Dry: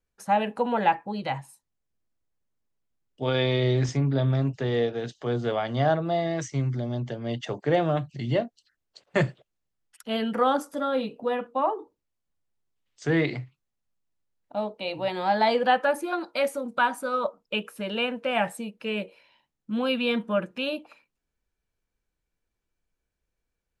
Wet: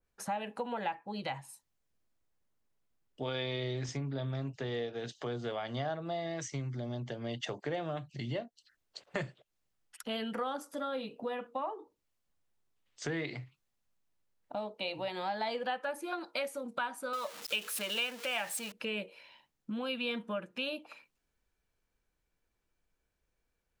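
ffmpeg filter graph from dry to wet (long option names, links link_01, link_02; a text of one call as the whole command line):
ffmpeg -i in.wav -filter_complex "[0:a]asettb=1/sr,asplit=3[link_01][link_02][link_03];[link_01]atrim=end=17.134[link_04];[link_02]atrim=start=17.13:end=18.72,asetpts=PTS-STARTPTS,afade=type=in:duration=0.004:curve=qsin,afade=type=out:start_time=1.586:duration=0.004:curve=qsin,aeval=exprs='val(0)+0.5*0.0141*sgn(val(0))':channel_layout=same,highpass=frequency=290:poles=1,tiltshelf=frequency=1500:gain=-4.5[link_05];[link_03]atrim=start=18.716[link_06];[link_04][link_05]acrossfade=duration=0.004:curve1=hsin:curve2=qsin[link_07];[link_07][link_06]acrossfade=duration=0.004:curve1=qsin:curve2=hsin,equalizer=frequency=1000:width=0.4:gain=3,acompressor=threshold=-39dB:ratio=3,adynamicequalizer=threshold=0.00251:dfrequency=2100:dqfactor=0.7:tfrequency=2100:tqfactor=0.7:attack=5:release=100:ratio=0.375:range=3:mode=boostabove:tftype=highshelf" out.wav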